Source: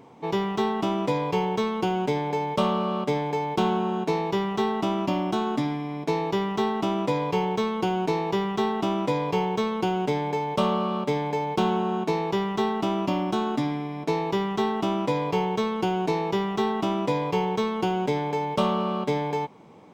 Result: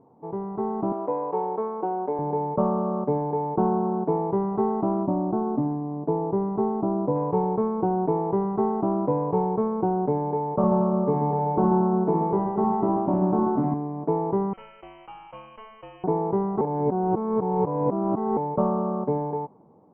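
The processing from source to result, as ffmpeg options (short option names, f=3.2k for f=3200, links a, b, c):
-filter_complex "[0:a]asettb=1/sr,asplit=3[a][b][c];[a]atrim=end=0.924[d];[b]atrim=start=0.92:end=2.19,asetpts=PTS-STARTPTS,afade=t=in:d=0.004:c=qsin,afade=t=out:st=1.266:d=0.004:c=qsin,highpass=420[e];[c]atrim=start=2.186[f];[d][e]acrossfade=d=0.004:c1=hsin:c2=qsin[g];[g][f]acrossfade=d=0.004:c1=qsin:c2=hsin,asettb=1/sr,asplit=3[h][i][j];[h]atrim=end=5.034[k];[i]atrim=start=5.03:end=7.16,asetpts=PTS-STARTPTS,afade=t=in:d=0.004:c=qsin,afade=t=out:st=2.126:d=0.004:c=qsin,equalizer=f=5.1k:w=0.31:g=-10[l];[j]atrim=start=7.156[m];[k][l]acrossfade=d=0.004:c1=hsin:c2=qsin[n];[n][m]acrossfade=d=0.004:c1=qsin:c2=hsin,asettb=1/sr,asplit=3[o][p][q];[o]atrim=end=10.534[r];[p]atrim=start=10.53:end=13.74,asetpts=PTS-STARTPTS,afade=t=in:d=0.004:c=qsin,afade=t=out:st=3.206:d=0.004:c=qsin,aecho=1:1:60|135|228.8|345.9|492.4:0.631|0.398|0.251|0.158|0.1,atrim=end_sample=141561[s];[q]atrim=start=13.736[t];[r][s]acrossfade=d=0.004:c1=hsin:c2=qsin[u];[u][t]acrossfade=d=0.004:c1=qsin:c2=hsin,asettb=1/sr,asplit=3[v][w][x];[v]atrim=end=14.534[y];[w]atrim=start=14.53:end=16.04,asetpts=PTS-STARTPTS,afade=t=in:d=0.004:c=qsin,afade=t=out:st=1.506:d=0.004:c=qsin,lowpass=f=2.8k:t=q:w=0.5098,lowpass=f=2.8k:t=q:w=0.6013,lowpass=f=2.8k:t=q:w=0.9,lowpass=f=2.8k:t=q:w=2.563,afreqshift=-3300[z];[x]atrim=start=16.036[aa];[y][z]acrossfade=d=0.004:c1=hsin:c2=qsin[ab];[ab][aa]acrossfade=d=0.004:c1=qsin:c2=hsin,asplit=3[ac][ad][ae];[ac]atrim=end=16.612[af];[ad]atrim=start=16.608:end=18.372,asetpts=PTS-STARTPTS,areverse[ag];[ae]atrim=start=18.368[ah];[af][ag]acrossfade=d=0.004:c1=hsin:c2=hsin[ai];[ai][ah]acrossfade=d=0.004:c1=hsin:c2=hsin,lowpass=f=1k:w=0.5412,lowpass=f=1k:w=1.3066,dynaudnorm=f=160:g=9:m=8dB,volume=-6dB"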